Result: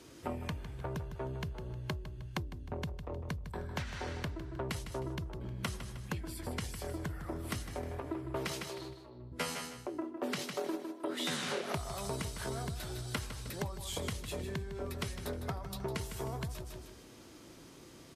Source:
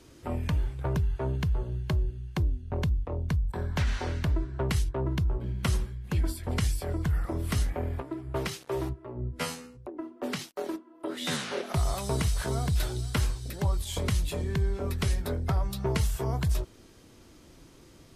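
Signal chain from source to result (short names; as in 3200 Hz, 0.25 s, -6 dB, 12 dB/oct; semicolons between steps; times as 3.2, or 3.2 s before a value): 8.69–9.32 ladder low-pass 4400 Hz, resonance 85%; on a send: feedback echo 0.155 s, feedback 28%, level -9 dB; on the sum: compressor, threshold -33 dBFS, peak gain reduction 11.5 dB; HPF 150 Hz 6 dB/oct; gain +1 dB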